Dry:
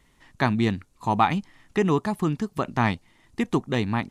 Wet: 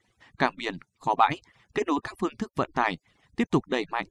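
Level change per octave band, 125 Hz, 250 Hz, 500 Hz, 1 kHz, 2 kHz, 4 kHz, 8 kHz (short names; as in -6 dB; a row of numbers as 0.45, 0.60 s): -10.5, -5.5, -2.5, -0.5, -0.5, -0.5, -2.5 dB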